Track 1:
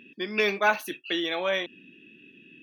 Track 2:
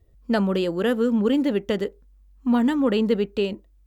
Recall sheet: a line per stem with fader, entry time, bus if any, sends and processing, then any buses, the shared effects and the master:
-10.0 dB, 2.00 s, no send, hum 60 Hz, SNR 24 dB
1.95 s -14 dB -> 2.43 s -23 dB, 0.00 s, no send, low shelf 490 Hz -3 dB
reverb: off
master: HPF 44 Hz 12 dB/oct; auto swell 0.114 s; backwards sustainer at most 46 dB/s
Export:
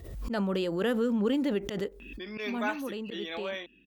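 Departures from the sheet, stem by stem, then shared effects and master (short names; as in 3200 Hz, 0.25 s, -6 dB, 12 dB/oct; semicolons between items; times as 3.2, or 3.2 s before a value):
stem 1: missing hum 60 Hz, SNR 24 dB; stem 2 -14.0 dB -> -5.0 dB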